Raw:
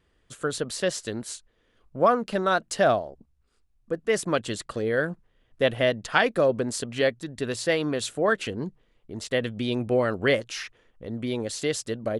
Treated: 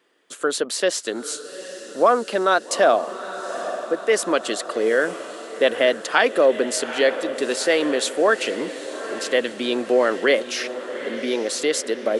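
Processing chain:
feedback delay with all-pass diffusion 843 ms, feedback 58%, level −13.5 dB
in parallel at +2 dB: brickwall limiter −17 dBFS, peak gain reduction 10.5 dB
on the sum: high-pass filter 280 Hz 24 dB per octave

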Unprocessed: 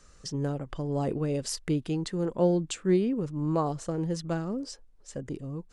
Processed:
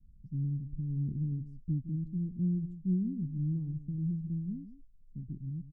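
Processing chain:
inverse Chebyshev low-pass filter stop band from 540 Hz, stop band 50 dB
single-tap delay 162 ms −13 dB
one half of a high-frequency compander decoder only

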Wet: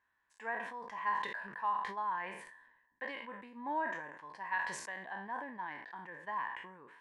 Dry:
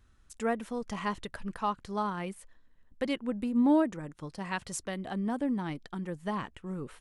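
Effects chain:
peak hold with a decay on every bin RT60 0.38 s
pair of resonant band-passes 1,300 Hz, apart 0.76 octaves
level that may fall only so fast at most 54 dB per second
level +2 dB

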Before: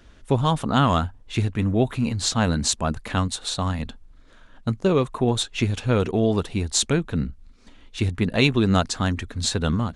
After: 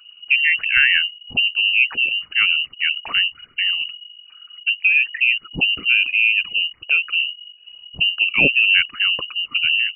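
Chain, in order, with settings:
spectral envelope exaggerated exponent 2
voice inversion scrambler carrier 2,900 Hz
level +3.5 dB

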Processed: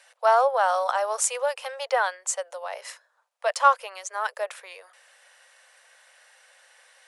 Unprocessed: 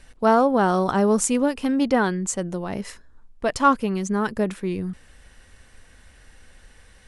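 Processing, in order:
Butterworth high-pass 520 Hz 72 dB per octave

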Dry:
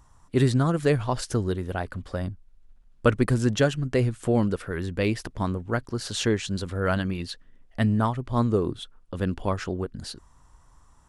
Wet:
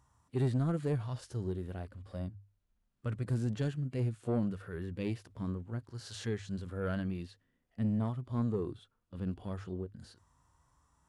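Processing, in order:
high-pass filter 67 Hz 12 dB per octave
mains-hum notches 50/100 Hz
harmonic and percussive parts rebalanced percussive −17 dB
soft clipping −17.5 dBFS, distortion −19 dB
level −6 dB

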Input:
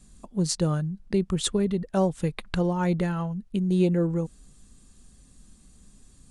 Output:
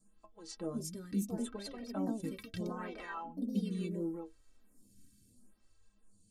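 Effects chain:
stiff-string resonator 96 Hz, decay 0.26 s, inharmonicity 0.03
delay with pitch and tempo change per echo 432 ms, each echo +3 semitones, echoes 2
phaser with staggered stages 0.74 Hz
level −2 dB

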